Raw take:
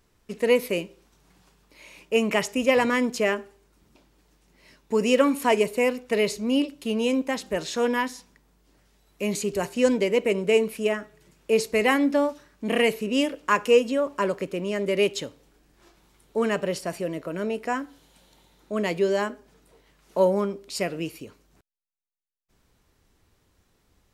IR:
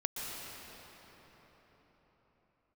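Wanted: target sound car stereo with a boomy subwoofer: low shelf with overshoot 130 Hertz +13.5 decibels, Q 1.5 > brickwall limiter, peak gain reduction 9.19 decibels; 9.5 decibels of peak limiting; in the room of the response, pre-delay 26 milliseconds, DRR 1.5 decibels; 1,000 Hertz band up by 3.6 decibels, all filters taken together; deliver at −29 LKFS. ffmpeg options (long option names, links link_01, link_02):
-filter_complex "[0:a]equalizer=frequency=1000:width_type=o:gain=4.5,alimiter=limit=-14dB:level=0:latency=1,asplit=2[link_01][link_02];[1:a]atrim=start_sample=2205,adelay=26[link_03];[link_02][link_03]afir=irnorm=-1:irlink=0,volume=-5dB[link_04];[link_01][link_04]amix=inputs=2:normalize=0,lowshelf=frequency=130:width_type=q:width=1.5:gain=13.5,volume=0.5dB,alimiter=limit=-19.5dB:level=0:latency=1"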